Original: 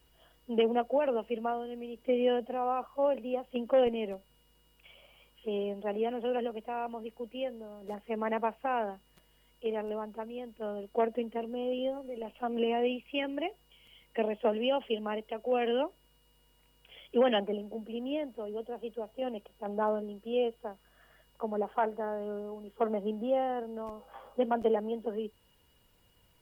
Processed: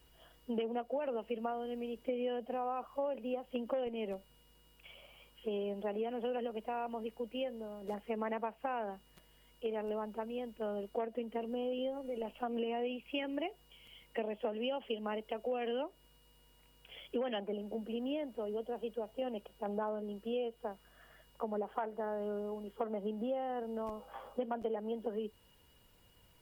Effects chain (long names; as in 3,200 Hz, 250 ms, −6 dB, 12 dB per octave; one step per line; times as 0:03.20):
downward compressor 6 to 1, threshold −35 dBFS, peak gain reduction 13.5 dB
level +1 dB